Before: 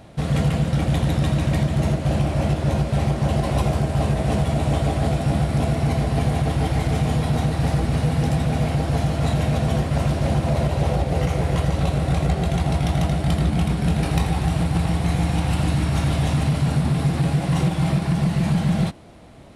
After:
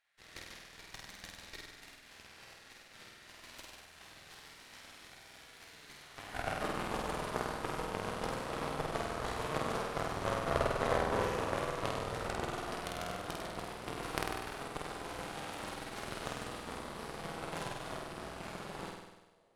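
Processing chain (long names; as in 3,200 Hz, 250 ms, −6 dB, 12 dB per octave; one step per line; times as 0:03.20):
high-pass filter sweep 1,800 Hz → 440 Hz, 0:05.94–0:06.71
harmonic generator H 3 −10 dB, 4 −19 dB, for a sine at −8 dBFS
on a send: flutter between parallel walls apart 8.4 metres, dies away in 1.1 s
on the sum: level −3.5 dB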